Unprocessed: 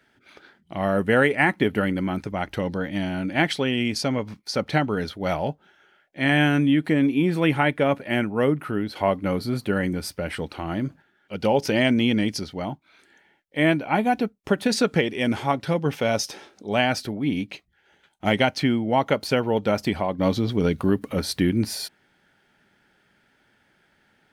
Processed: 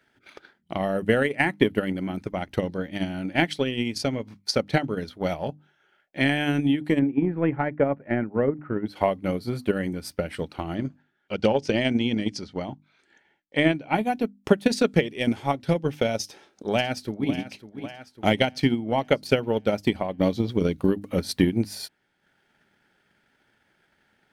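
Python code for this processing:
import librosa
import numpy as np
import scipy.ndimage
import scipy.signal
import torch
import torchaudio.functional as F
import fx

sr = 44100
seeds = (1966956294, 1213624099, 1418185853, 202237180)

y = fx.lowpass(x, sr, hz=1800.0, slope=24, at=(6.99, 8.86))
y = fx.lowpass(y, sr, hz=8200.0, slope=24, at=(10.75, 13.89))
y = fx.echo_throw(y, sr, start_s=16.23, length_s=1.09, ms=550, feedback_pct=55, wet_db=-11.0)
y = fx.hum_notches(y, sr, base_hz=50, count=6)
y = fx.dynamic_eq(y, sr, hz=1200.0, q=0.98, threshold_db=-36.0, ratio=4.0, max_db=-6)
y = fx.transient(y, sr, attack_db=9, sustain_db=-5)
y = y * 10.0 ** (-3.5 / 20.0)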